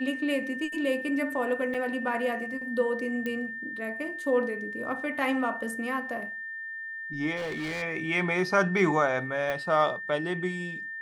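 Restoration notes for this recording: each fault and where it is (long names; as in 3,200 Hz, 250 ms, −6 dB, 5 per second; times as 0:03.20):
whistle 1,800 Hz −35 dBFS
0:01.74: drop-out 4.7 ms
0:03.26: click −20 dBFS
0:07.36–0:07.83: clipping −30 dBFS
0:09.50: click −18 dBFS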